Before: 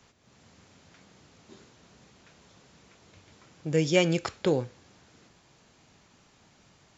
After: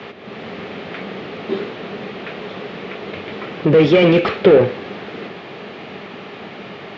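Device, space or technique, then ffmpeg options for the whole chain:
overdrive pedal into a guitar cabinet: -filter_complex "[0:a]asplit=2[s0][s1];[s1]highpass=f=720:p=1,volume=63.1,asoftclip=type=tanh:threshold=0.355[s2];[s0][s2]amix=inputs=2:normalize=0,lowpass=f=1800:p=1,volume=0.501,highpass=76,equalizer=f=200:t=q:w=4:g=7,equalizer=f=410:t=q:w=4:g=8,equalizer=f=960:t=q:w=4:g=-7,equalizer=f=1500:t=q:w=4:g=-5,lowpass=f=3500:w=0.5412,lowpass=f=3500:w=1.3066,volume=1.58"

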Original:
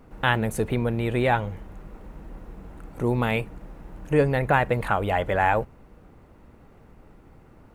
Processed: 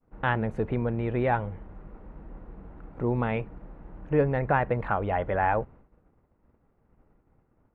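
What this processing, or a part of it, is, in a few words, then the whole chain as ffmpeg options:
hearing-loss simulation: -af "lowpass=1800,agate=range=0.0224:threshold=0.00891:ratio=3:detection=peak,volume=0.708"

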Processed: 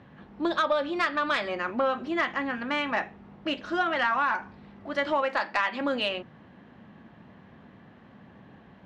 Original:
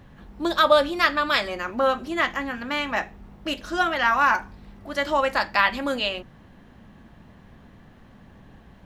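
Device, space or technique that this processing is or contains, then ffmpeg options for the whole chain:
AM radio: -filter_complex "[0:a]asettb=1/sr,asplit=3[s0][s1][s2];[s0]atrim=end=5.224[s3];[s1]atrim=start=5.22:end=5.81,asetpts=PTS-STARTPTS,afade=t=in:d=0.004:c=qsin,afade=t=out:st=0.586:d=0.004:c=qsin,highpass=220[s4];[s2]atrim=start=5.806[s5];[s3][s4]acrossfade=d=0.004:c1=hsin:c2=qsin[s6];[s6][s5]acrossfade=d=0.004:c1=qsin:c2=hsin,highpass=130,lowpass=3300,acompressor=threshold=0.0891:ratio=5,asoftclip=type=tanh:threshold=0.211"

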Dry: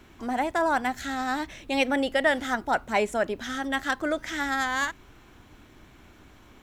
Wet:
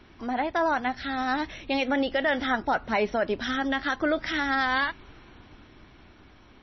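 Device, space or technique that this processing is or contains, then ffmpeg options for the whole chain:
low-bitrate web radio: -af "dynaudnorm=f=280:g=11:m=1.68,alimiter=limit=0.178:level=0:latency=1:release=122" -ar 22050 -c:a libmp3lame -b:a 24k

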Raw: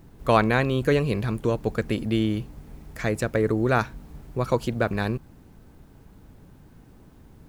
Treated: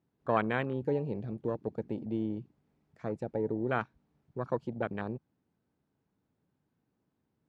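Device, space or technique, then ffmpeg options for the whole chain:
over-cleaned archive recording: -af "highpass=130,lowpass=5400,afwtdn=0.0398,volume=0.355"

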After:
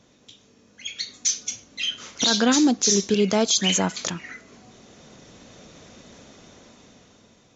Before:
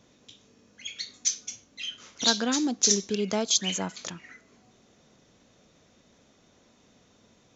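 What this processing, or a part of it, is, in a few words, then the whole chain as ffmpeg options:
low-bitrate web radio: -af "dynaudnorm=f=290:g=9:m=3.76,alimiter=limit=0.224:level=0:latency=1:release=17,volume=1.41" -ar 44100 -c:a libmp3lame -b:a 48k

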